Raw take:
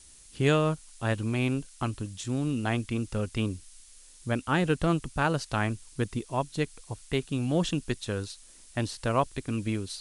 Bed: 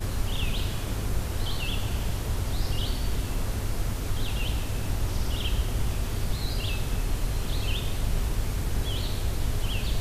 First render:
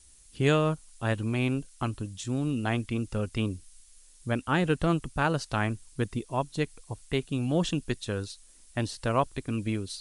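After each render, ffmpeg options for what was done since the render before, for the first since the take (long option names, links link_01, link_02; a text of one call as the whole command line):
ffmpeg -i in.wav -af "afftdn=noise_reduction=6:noise_floor=-53" out.wav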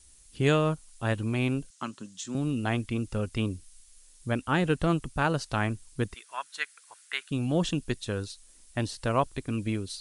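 ffmpeg -i in.wav -filter_complex "[0:a]asettb=1/sr,asplit=3[link_01][link_02][link_03];[link_01]atrim=end=1.704[link_04];[link_02]atrim=start=1.7:end=2.35,asetpts=PTS-STARTPTS,afade=type=in:duration=0.004:curve=qsin,afade=type=out:start_time=0.646:duration=0.004:curve=qsin,highpass=frequency=190:width=0.5412,highpass=frequency=190:width=1.3066,equalizer=frequency=310:width_type=q:width=4:gain=-8,equalizer=frequency=460:width_type=q:width=4:gain=-8,equalizer=frequency=730:width_type=q:width=4:gain=-9,equalizer=frequency=2400:width_type=q:width=4:gain=-4,equalizer=frequency=6600:width_type=q:width=4:gain=4,lowpass=frequency=8600:width=0.5412,lowpass=frequency=8600:width=1.3066[link_05];[link_03]atrim=start=2.346[link_06];[link_04][link_05]acrossfade=duration=0.004:curve1=hsin:curve2=qsin[link_07];[link_07][link_06]acrossfade=duration=0.004:curve1=qsin:curve2=hsin,asettb=1/sr,asplit=3[link_08][link_09][link_10];[link_08]atrim=end=6.144[link_11];[link_09]atrim=start=6.14:end=7.31,asetpts=PTS-STARTPTS,afade=type=in:duration=0.004:curve=qsin,afade=type=out:start_time=1.166:duration=0.004:curve=qsin,highpass=frequency=1500:width_type=q:width=3.3[link_12];[link_10]atrim=start=7.306[link_13];[link_11][link_12]acrossfade=duration=0.004:curve1=hsin:curve2=qsin[link_14];[link_14][link_13]acrossfade=duration=0.004:curve1=qsin:curve2=hsin" out.wav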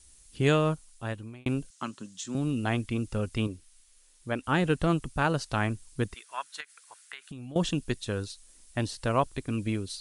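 ffmpeg -i in.wav -filter_complex "[0:a]asettb=1/sr,asplit=3[link_01][link_02][link_03];[link_01]atrim=end=3.474[link_04];[link_02]atrim=start=3.47:end=4.44,asetpts=PTS-STARTPTS,afade=type=in:duration=0.004:curve=qsin,afade=type=out:start_time=0.966:duration=0.004:curve=qsin,bass=frequency=250:gain=-7,treble=frequency=4000:gain=-5[link_05];[link_03]atrim=start=4.436[link_06];[link_04][link_05]acrossfade=duration=0.004:curve1=hsin:curve2=qsin[link_07];[link_07][link_06]acrossfade=duration=0.004:curve1=qsin:curve2=hsin,asettb=1/sr,asplit=3[link_08][link_09][link_10];[link_08]atrim=end=6.604[link_11];[link_09]atrim=start=6.6:end=7.56,asetpts=PTS-STARTPTS,afade=type=in:duration=0.004:curve=qsin,afade=type=out:start_time=0.956:duration=0.004:curve=qsin,acompressor=threshold=-37dB:ratio=16:attack=3.2:release=140:knee=1:detection=peak[link_12];[link_10]atrim=start=7.556[link_13];[link_11][link_12]acrossfade=duration=0.004:curve1=hsin:curve2=qsin[link_14];[link_14][link_13]acrossfade=duration=0.004:curve1=qsin:curve2=hsin,asplit=2[link_15][link_16];[link_15]atrim=end=1.46,asetpts=PTS-STARTPTS,afade=type=out:start_time=0.71:duration=0.75[link_17];[link_16]atrim=start=1.46,asetpts=PTS-STARTPTS,afade=type=in:duration=0.004:curve=hsin[link_18];[link_17][link_18]concat=n=2:v=0:a=1" out.wav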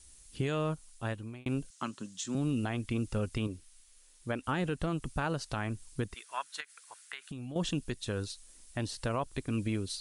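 ffmpeg -i in.wav -af "alimiter=limit=-22dB:level=0:latency=1:release=180" out.wav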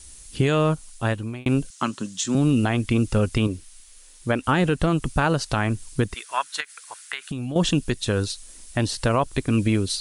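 ffmpeg -i in.wav -af "volume=12dB" out.wav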